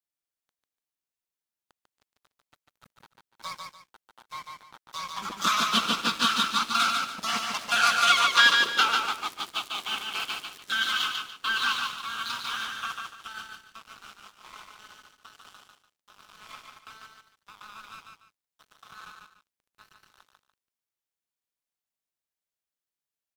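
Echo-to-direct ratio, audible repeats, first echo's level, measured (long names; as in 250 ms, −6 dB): −3.5 dB, 2, −4.0 dB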